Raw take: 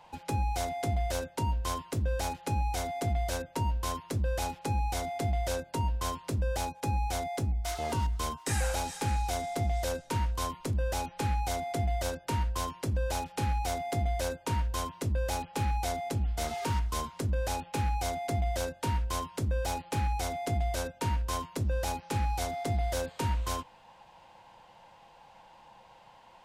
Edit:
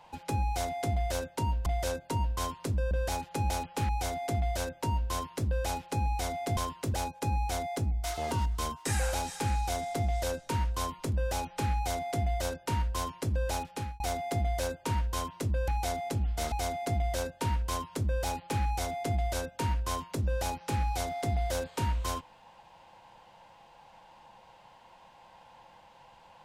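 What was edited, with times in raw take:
1.66–2.03 swap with 5.3–6.55
13.12–13.61 fade out equal-power
15.29–15.68 move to 2.62
16.52–17.94 cut

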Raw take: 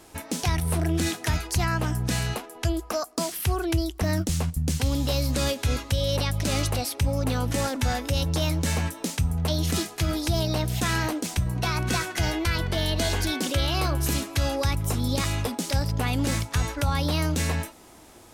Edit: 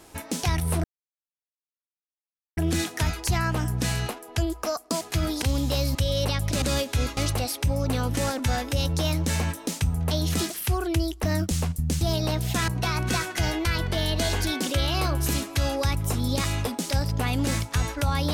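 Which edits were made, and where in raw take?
0.84 insert silence 1.73 s
3.28–4.79 swap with 9.87–10.28
5.32–5.87 move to 6.54
10.95–11.48 cut

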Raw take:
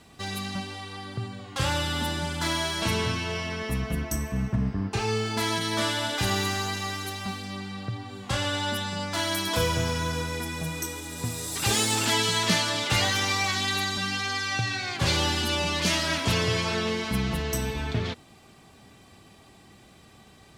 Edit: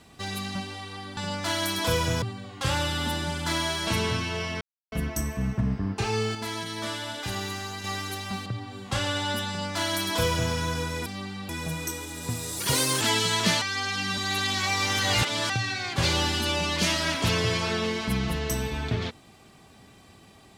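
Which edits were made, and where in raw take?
3.56–3.87 mute
5.3–6.79 gain -6 dB
7.41–7.84 move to 10.44
8.86–9.91 copy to 1.17
11.54–12.04 speed 120%
12.65–14.53 reverse

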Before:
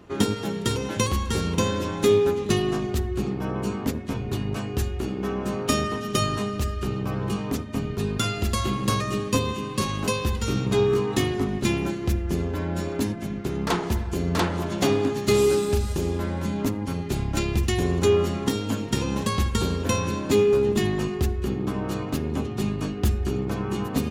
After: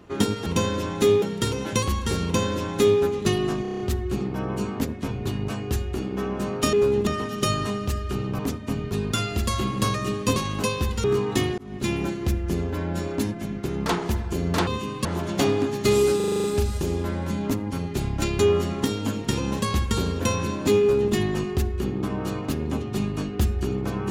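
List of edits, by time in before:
1.48–2.24 copy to 0.46
2.86 stutter 0.03 s, 7 plays
7.11–7.45 cut
9.42–9.8 move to 14.48
10.48–10.85 cut
11.39–11.92 fade in equal-power
15.59 stutter 0.04 s, 8 plays
17.54–18.03 cut
20.44–20.78 copy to 5.79

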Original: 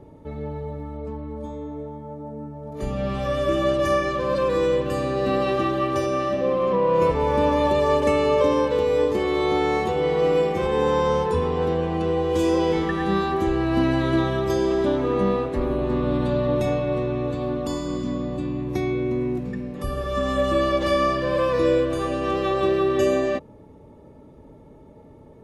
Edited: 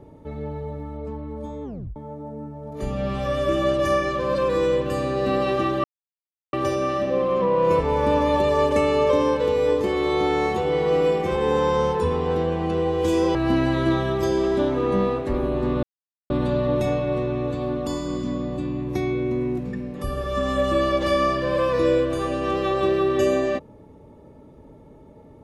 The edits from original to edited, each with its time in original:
1.64 tape stop 0.32 s
5.84 insert silence 0.69 s
12.66–13.62 cut
16.1 insert silence 0.47 s

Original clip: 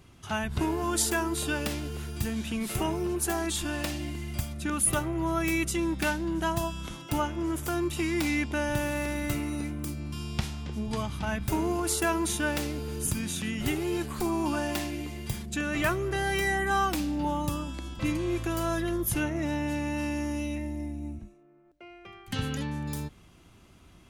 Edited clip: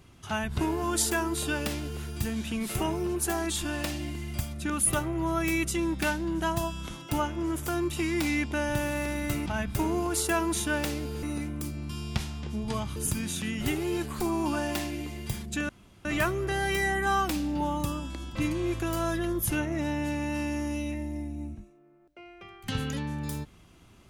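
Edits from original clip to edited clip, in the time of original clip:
9.46–11.19 move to 12.96
15.69 insert room tone 0.36 s

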